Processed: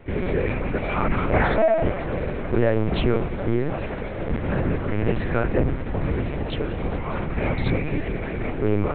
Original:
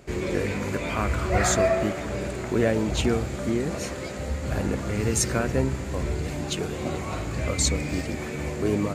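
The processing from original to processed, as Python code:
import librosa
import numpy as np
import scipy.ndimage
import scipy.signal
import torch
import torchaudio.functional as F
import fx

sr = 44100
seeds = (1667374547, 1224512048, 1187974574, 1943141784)

y = scipy.signal.sosfilt(scipy.signal.butter(2, 2700.0, 'lowpass', fs=sr, output='sos'), x)
y = 10.0 ** (-12.5 / 20.0) * np.tanh(y / 10.0 ** (-12.5 / 20.0))
y = fx.lpc_vocoder(y, sr, seeds[0], excitation='pitch_kept', order=8)
y = F.gain(torch.from_numpy(y), 4.0).numpy()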